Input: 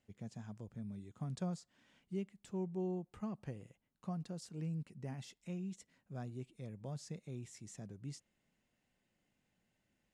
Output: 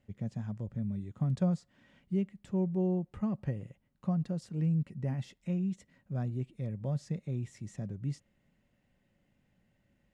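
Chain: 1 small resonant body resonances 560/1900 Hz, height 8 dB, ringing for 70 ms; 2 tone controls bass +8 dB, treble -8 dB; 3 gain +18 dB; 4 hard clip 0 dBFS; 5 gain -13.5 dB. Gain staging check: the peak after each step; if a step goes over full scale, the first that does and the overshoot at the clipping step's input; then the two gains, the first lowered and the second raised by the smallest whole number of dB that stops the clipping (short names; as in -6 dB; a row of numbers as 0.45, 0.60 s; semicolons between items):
-27.0, -22.5, -4.5, -4.5, -18.0 dBFS; no overload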